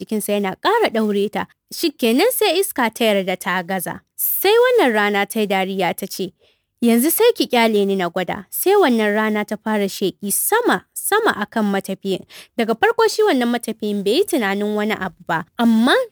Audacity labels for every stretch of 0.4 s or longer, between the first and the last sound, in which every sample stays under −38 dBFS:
6.290000	6.820000	silence